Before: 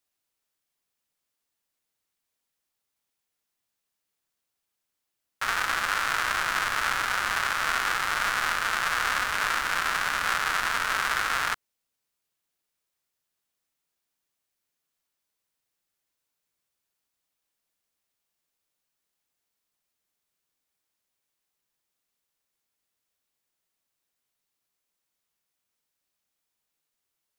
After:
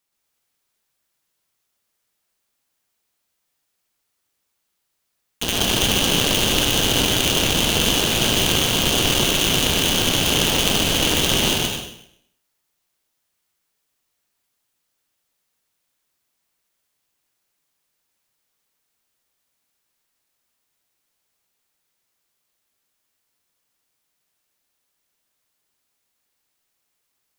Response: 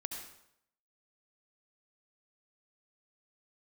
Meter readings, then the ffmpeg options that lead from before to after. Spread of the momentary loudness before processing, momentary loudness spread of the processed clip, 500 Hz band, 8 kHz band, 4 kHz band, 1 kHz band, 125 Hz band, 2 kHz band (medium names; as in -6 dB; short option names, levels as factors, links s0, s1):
1 LU, 3 LU, +17.0 dB, +15.0 dB, +15.5 dB, -1.0 dB, +23.5 dB, 0.0 dB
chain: -filter_complex "[0:a]asplit=2[s0][s1];[1:a]atrim=start_sample=2205,adelay=124[s2];[s1][s2]afir=irnorm=-1:irlink=0,volume=1.33[s3];[s0][s3]amix=inputs=2:normalize=0,aeval=exprs='val(0)*sgn(sin(2*PI*1600*n/s))':c=same,volume=1.58"